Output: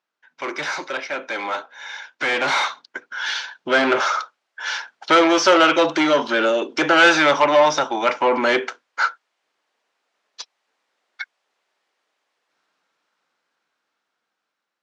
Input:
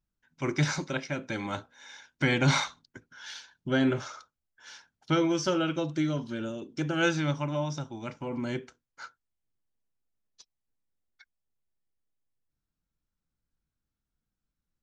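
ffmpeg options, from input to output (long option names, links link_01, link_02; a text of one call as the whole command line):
ffmpeg -i in.wav -filter_complex "[0:a]asplit=2[link_01][link_02];[link_02]highpass=frequency=720:poles=1,volume=25dB,asoftclip=type=tanh:threshold=-12dB[link_03];[link_01][link_03]amix=inputs=2:normalize=0,lowpass=frequency=1900:poles=1,volume=-6dB,highpass=480,lowpass=6400,dynaudnorm=framelen=970:gausssize=7:maxgain=16dB,volume=-1.5dB" out.wav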